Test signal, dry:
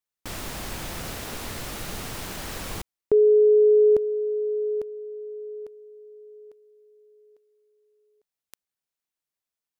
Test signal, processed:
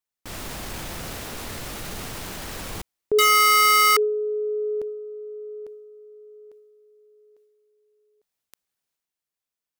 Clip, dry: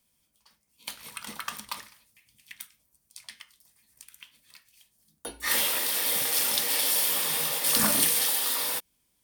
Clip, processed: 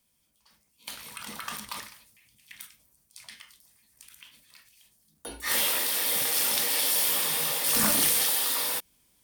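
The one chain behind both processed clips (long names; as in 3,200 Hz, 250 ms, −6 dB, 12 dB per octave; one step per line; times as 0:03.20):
transient designer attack −3 dB, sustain +6 dB
wrap-around overflow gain 13.5 dB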